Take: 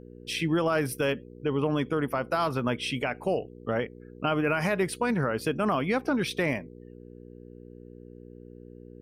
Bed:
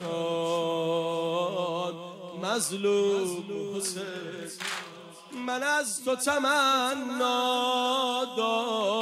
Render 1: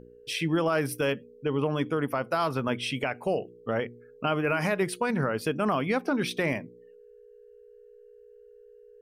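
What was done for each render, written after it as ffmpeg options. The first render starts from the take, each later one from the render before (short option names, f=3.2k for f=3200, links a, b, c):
-af "bandreject=f=60:t=h:w=4,bandreject=f=120:t=h:w=4,bandreject=f=180:t=h:w=4,bandreject=f=240:t=h:w=4,bandreject=f=300:t=h:w=4,bandreject=f=360:t=h:w=4"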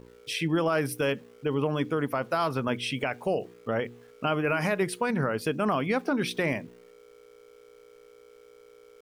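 -af "aeval=exprs='val(0)*gte(abs(val(0)),0.002)':c=same"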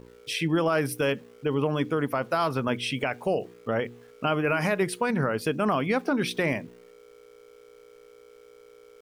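-af "volume=1.5dB"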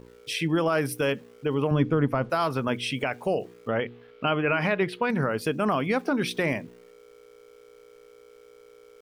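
-filter_complex "[0:a]asettb=1/sr,asplit=3[a][b][c];[a]atrim=end=1.714[d];[b]atrim=start=1.71:end=2.3,asetpts=PTS-STARTPTS,afade=t=in:d=0.004:c=qsin,afade=t=out:st=0.586:d=0.004:c=qsin,aemphasis=mode=reproduction:type=bsi[e];[c]atrim=start=2.296[f];[d][e]acrossfade=d=0.004:c1=hsin:c2=qsin[g];[g][f]acrossfade=d=0.004:c1=qsin:c2=hsin,asettb=1/sr,asplit=3[h][i][j];[h]atrim=end=3.714[k];[i]atrim=start=3.71:end=5.1,asetpts=PTS-STARTPTS,afade=t=in:d=0.004:c=qsin,afade=t=out:st=1.386:d=0.004:c=qsin,highshelf=f=5k:t=q:w=1.5:g=-13.5[l];[j]atrim=start=5.096[m];[k][l]acrossfade=d=0.004:c1=hsin:c2=qsin[n];[n][m]acrossfade=d=0.004:c1=qsin:c2=hsin"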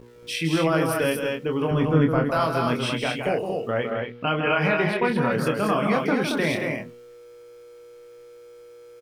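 -filter_complex "[0:a]asplit=2[a][b];[b]adelay=25,volume=-5dB[c];[a][c]amix=inputs=2:normalize=0,aecho=1:1:160.3|227.4:0.447|0.631"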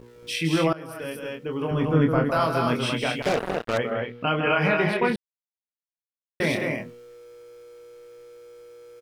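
-filter_complex "[0:a]asettb=1/sr,asplit=3[a][b][c];[a]atrim=end=3.224[d];[b]atrim=start=3.22:end=3.78,asetpts=PTS-STARTPTS,afade=t=in:d=0.004:c=qsin,afade=t=out:st=0.556:d=0.004:c=qsin,acrusher=bits=3:mix=0:aa=0.5[e];[c]atrim=start=3.776[f];[d][e]acrossfade=d=0.004:c1=hsin:c2=qsin[g];[g][f]acrossfade=d=0.004:c1=qsin:c2=hsin,asplit=4[h][i][j][k];[h]atrim=end=0.73,asetpts=PTS-STARTPTS,afade=t=out:st=0.726:d=0.004:c=hsin:silence=0.0944061[l];[i]atrim=start=0.73:end=5.16,asetpts=PTS-STARTPTS,afade=t=in:d=1.42:silence=0.0944061,afade=t=out:st=4.426:d=0.004:c=hsin[m];[j]atrim=start=5.16:end=6.4,asetpts=PTS-STARTPTS,volume=0[n];[k]atrim=start=6.4,asetpts=PTS-STARTPTS,afade=t=in:d=0.004:c=hsin[o];[l][m][n][o]concat=n=4:v=0:a=1"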